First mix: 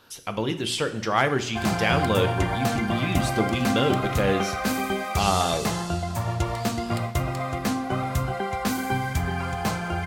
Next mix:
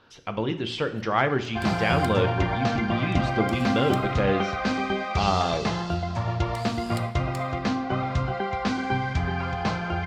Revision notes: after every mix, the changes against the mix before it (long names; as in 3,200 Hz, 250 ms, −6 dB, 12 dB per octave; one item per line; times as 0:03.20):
speech: add high-frequency loss of the air 190 metres
second sound: add low-pass filter 5,100 Hz 24 dB per octave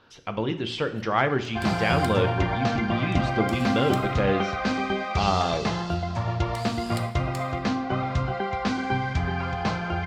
first sound: send +6.0 dB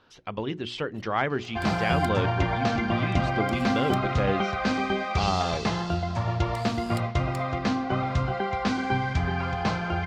reverb: off